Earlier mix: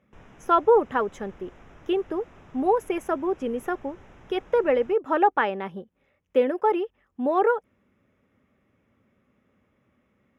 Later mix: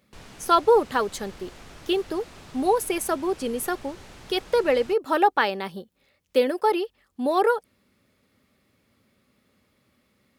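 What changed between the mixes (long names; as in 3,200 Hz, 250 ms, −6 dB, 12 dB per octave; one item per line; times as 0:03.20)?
background +3.5 dB
master: remove moving average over 10 samples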